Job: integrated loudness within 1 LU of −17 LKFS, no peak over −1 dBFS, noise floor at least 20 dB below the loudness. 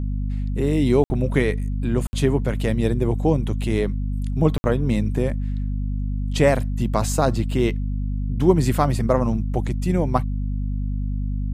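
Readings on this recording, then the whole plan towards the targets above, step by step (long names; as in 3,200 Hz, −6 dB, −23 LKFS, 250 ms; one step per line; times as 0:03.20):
number of dropouts 3; longest dropout 60 ms; mains hum 50 Hz; hum harmonics up to 250 Hz; level of the hum −22 dBFS; integrated loudness −22.5 LKFS; sample peak −3.5 dBFS; target loudness −17.0 LKFS
→ repair the gap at 0:01.04/0:02.07/0:04.58, 60 ms
mains-hum notches 50/100/150/200/250 Hz
level +5.5 dB
brickwall limiter −1 dBFS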